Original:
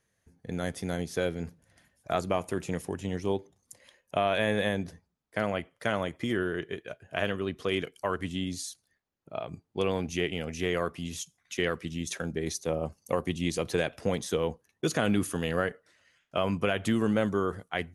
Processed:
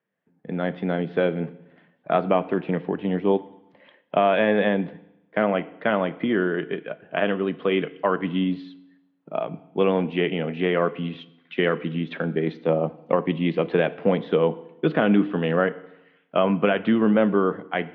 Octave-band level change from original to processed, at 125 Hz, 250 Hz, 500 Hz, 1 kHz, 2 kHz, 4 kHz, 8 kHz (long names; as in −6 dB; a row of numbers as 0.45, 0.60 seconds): +5.5 dB, +8.5 dB, +8.0 dB, +7.5 dB, +5.5 dB, +1.0 dB, below −35 dB